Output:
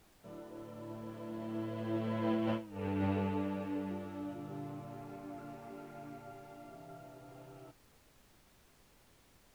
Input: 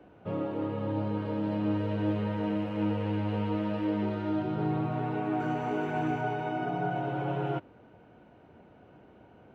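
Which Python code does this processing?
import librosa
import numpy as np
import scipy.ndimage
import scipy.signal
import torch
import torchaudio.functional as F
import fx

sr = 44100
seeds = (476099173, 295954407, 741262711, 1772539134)

y = fx.doppler_pass(x, sr, speed_mps=23, closest_m=1.2, pass_at_s=2.69)
y = scipy.signal.sosfilt(scipy.signal.butter(2, 110.0, 'highpass', fs=sr, output='sos'), y)
y = fx.over_compress(y, sr, threshold_db=-48.0, ratio=-1.0)
y = fx.dmg_noise_colour(y, sr, seeds[0], colour='pink', level_db=-77.0)
y = F.gain(torch.from_numpy(y), 11.5).numpy()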